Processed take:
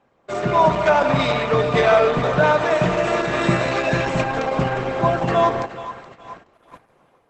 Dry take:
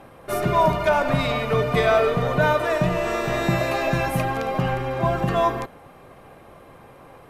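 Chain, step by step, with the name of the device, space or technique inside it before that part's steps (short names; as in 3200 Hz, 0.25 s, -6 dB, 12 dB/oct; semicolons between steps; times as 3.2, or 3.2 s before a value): split-band echo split 850 Hz, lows 0.168 s, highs 0.422 s, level -14 dB; 3.27–4.15 dynamic EQ 720 Hz, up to -6 dB, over -40 dBFS, Q 4.8; video call (HPF 150 Hz 6 dB/oct; AGC gain up to 5 dB; gate -38 dBFS, range -15 dB; Opus 12 kbps 48000 Hz)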